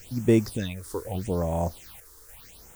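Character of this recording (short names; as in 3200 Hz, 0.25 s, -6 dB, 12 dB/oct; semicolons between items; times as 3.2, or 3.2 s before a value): a quantiser's noise floor 8-bit, dither triangular; phasing stages 6, 0.81 Hz, lowest notch 170–4600 Hz; random-step tremolo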